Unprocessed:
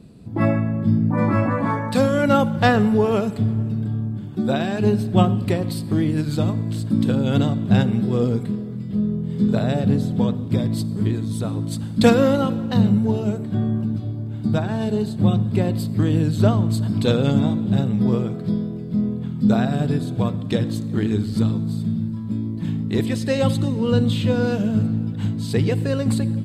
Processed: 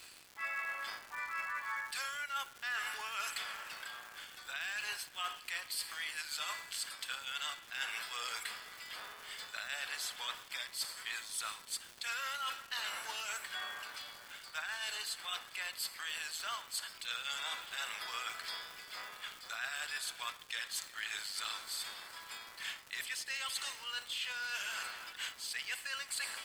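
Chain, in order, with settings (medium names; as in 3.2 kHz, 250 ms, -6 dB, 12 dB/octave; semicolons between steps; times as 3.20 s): octave divider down 1 oct, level 0 dB; high-pass 1.5 kHz 24 dB/octave; band-stop 3.8 kHz, Q 8.5; reverse; compression 16:1, threshold -48 dBFS, peak gain reduction 28.5 dB; reverse; crackle 330 per s -53 dBFS; trim +11.5 dB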